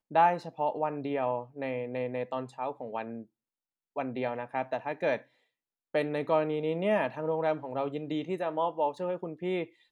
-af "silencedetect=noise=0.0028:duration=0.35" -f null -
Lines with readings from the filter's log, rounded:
silence_start: 3.24
silence_end: 3.96 | silence_duration: 0.72
silence_start: 5.23
silence_end: 5.94 | silence_duration: 0.71